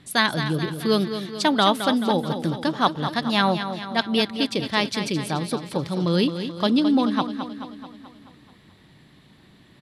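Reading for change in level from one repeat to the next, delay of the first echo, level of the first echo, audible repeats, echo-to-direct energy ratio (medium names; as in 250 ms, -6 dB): -5.0 dB, 216 ms, -9.5 dB, 6, -8.0 dB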